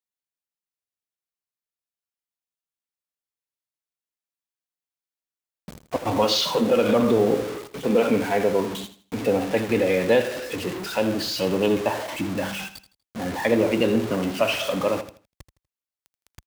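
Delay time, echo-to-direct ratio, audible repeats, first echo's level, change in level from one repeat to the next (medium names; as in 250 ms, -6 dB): 81 ms, -12.5 dB, 3, -13.0 dB, -11.0 dB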